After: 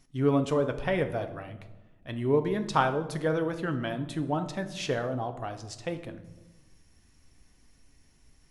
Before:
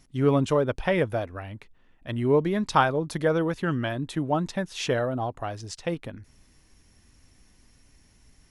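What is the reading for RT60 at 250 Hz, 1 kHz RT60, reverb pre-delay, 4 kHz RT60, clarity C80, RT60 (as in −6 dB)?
1.5 s, 1.0 s, 3 ms, 0.60 s, 14.5 dB, 1.1 s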